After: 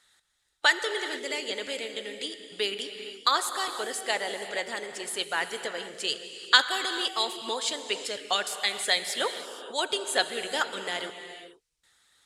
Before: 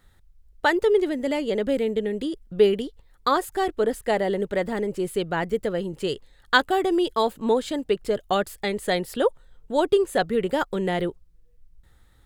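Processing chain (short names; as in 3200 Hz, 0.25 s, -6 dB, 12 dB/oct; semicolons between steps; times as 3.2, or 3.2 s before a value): weighting filter ITU-R 468; non-linear reverb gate 0.5 s flat, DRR 5.5 dB; harmonic-percussive split harmonic -7 dB; gain -2 dB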